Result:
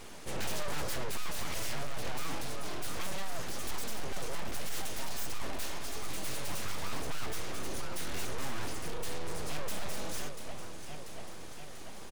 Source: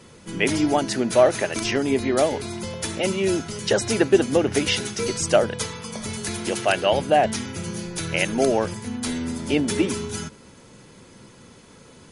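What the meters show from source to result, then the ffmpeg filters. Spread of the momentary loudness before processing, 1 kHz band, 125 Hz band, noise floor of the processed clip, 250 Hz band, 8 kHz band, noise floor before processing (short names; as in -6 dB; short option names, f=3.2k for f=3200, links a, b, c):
11 LU, -14.5 dB, -13.0 dB, -40 dBFS, -21.5 dB, -11.0 dB, -49 dBFS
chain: -af "aeval=exprs='abs(val(0))':c=same,aecho=1:1:689|1378|2067|2756|3445:0.112|0.064|0.0365|0.0208|0.0118,aeval=exprs='(tanh(17.8*val(0)+0.75)-tanh(0.75))/17.8':c=same,volume=7.5dB"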